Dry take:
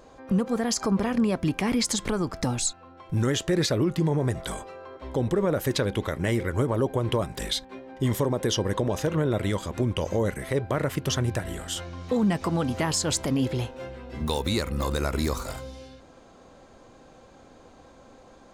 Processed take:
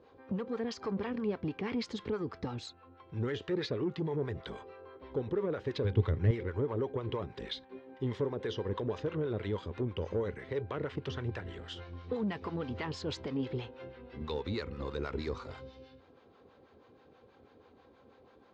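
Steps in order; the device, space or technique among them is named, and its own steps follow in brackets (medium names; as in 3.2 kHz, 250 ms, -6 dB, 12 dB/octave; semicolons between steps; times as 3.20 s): guitar amplifier with harmonic tremolo (harmonic tremolo 6.2 Hz, depth 70%, crossover 620 Hz; saturation -20.5 dBFS, distortion -18 dB; cabinet simulation 84–4200 Hz, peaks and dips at 87 Hz +6 dB, 170 Hz -3 dB, 430 Hz +8 dB, 630 Hz -6 dB); 5.84–6.31 s: peaking EQ 100 Hz +14 dB 1.5 oct; trim -6 dB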